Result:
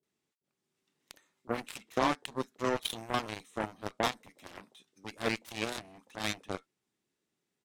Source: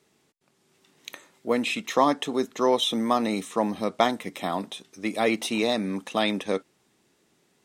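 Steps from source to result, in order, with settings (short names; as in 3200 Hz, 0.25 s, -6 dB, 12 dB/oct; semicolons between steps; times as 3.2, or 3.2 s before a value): bands offset in time lows, highs 30 ms, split 720 Hz; added harmonics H 7 -15 dB, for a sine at -9 dBFS; gain -5.5 dB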